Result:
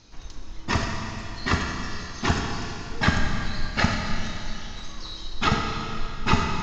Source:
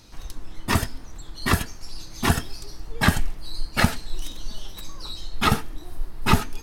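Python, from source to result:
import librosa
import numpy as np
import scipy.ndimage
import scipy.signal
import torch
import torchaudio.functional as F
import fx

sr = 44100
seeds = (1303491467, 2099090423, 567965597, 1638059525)

y = scipy.signal.sosfilt(scipy.signal.cheby1(6, 1.0, 6900.0, 'lowpass', fs=sr, output='sos'), x)
y = fx.rev_schroeder(y, sr, rt60_s=3.1, comb_ms=28, drr_db=1.5)
y = fx.dmg_crackle(y, sr, seeds[0], per_s=14.0, level_db=-52.0)
y = y * 10.0 ** (-2.0 / 20.0)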